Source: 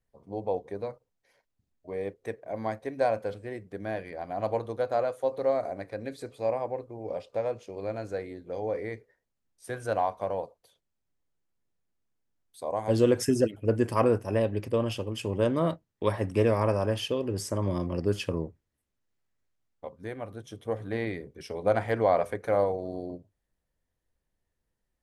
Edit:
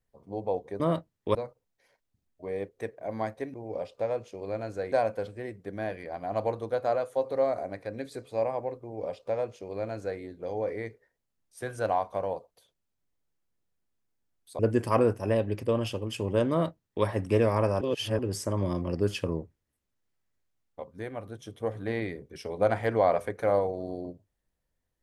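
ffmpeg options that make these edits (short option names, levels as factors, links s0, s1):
-filter_complex "[0:a]asplit=8[s0][s1][s2][s3][s4][s5][s6][s7];[s0]atrim=end=0.802[s8];[s1]atrim=start=15.548:end=16.102[s9];[s2]atrim=start=0.798:end=2.992[s10];[s3]atrim=start=6.888:end=8.272[s11];[s4]atrim=start=2.988:end=12.662[s12];[s5]atrim=start=13.638:end=16.862[s13];[s6]atrim=start=16.858:end=17.242,asetpts=PTS-STARTPTS,areverse[s14];[s7]atrim=start=17.238[s15];[s8][s9]acrossfade=d=0.004:c1=hsin:c2=hsin[s16];[s16][s10]acrossfade=d=0.004:c1=hsin:c2=hsin[s17];[s17][s11]acrossfade=d=0.004:c1=hsin:c2=hsin[s18];[s18][s12]acrossfade=d=0.004:c1=hsin:c2=hsin[s19];[s19][s13]acrossfade=d=0.004:c1=hsin:c2=hsin[s20];[s20][s14]acrossfade=d=0.004:c1=hsin:c2=hsin[s21];[s21][s15]acrossfade=d=0.004:c1=hsin:c2=hsin"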